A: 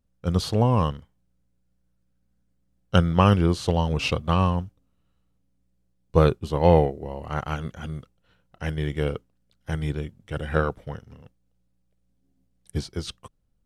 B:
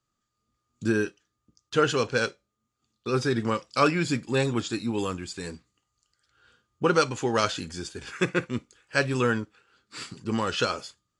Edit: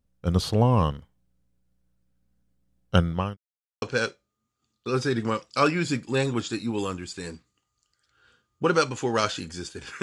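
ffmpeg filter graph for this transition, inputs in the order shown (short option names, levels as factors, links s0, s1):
-filter_complex "[0:a]apad=whole_dur=10.02,atrim=end=10.02,asplit=2[s0][s1];[s0]atrim=end=3.37,asetpts=PTS-STARTPTS,afade=t=out:st=2.9:d=0.47[s2];[s1]atrim=start=3.37:end=3.82,asetpts=PTS-STARTPTS,volume=0[s3];[1:a]atrim=start=2.02:end=8.22,asetpts=PTS-STARTPTS,afade=t=in:d=0.004:c=hsin[s4];[s2][s3][s4]concat=n=3:v=0:a=1"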